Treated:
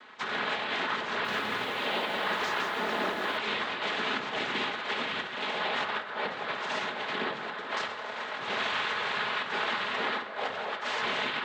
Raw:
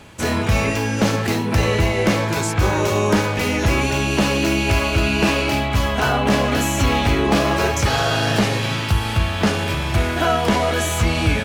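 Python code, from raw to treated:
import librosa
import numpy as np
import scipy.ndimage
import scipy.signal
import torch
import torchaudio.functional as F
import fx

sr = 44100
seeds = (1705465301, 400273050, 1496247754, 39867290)

y = fx.rattle_buzz(x, sr, strikes_db=-28.0, level_db=-17.0)
y = scipy.signal.sosfilt(scipy.signal.butter(2, 540.0, 'highpass', fs=sr, output='sos'), y)
y = fx.peak_eq(y, sr, hz=1700.0, db=10.5, octaves=0.43)
y = fx.over_compress(y, sr, threshold_db=-22.0, ratio=-0.5)
y = fx.noise_vocoder(y, sr, seeds[0], bands=6)
y = fx.air_absorb(y, sr, metres=180.0)
y = fx.room_shoebox(y, sr, seeds[1], volume_m3=2800.0, walls='furnished', distance_m=1.4)
y = fx.echo_crushed(y, sr, ms=165, feedback_pct=35, bits=7, wet_db=-5.0, at=(1.08, 3.38))
y = F.gain(torch.from_numpy(y), -8.5).numpy()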